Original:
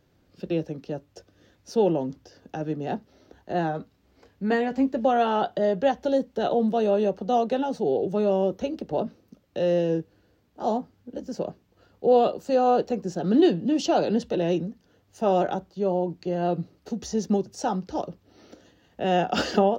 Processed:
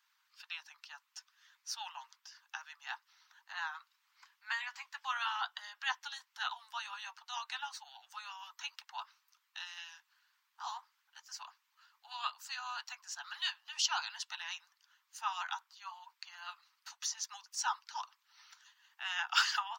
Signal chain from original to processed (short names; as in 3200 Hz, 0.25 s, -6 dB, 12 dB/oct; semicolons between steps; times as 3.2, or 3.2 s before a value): harmonic-percussive split harmonic -11 dB; steep high-pass 940 Hz 72 dB/oct; gain +2.5 dB